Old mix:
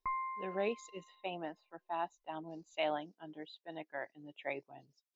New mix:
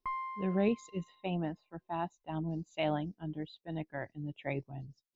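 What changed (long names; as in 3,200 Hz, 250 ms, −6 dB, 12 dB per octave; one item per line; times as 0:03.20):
speech: remove high-pass filter 480 Hz 12 dB per octave
background: remove linear-phase brick-wall low-pass 2,700 Hz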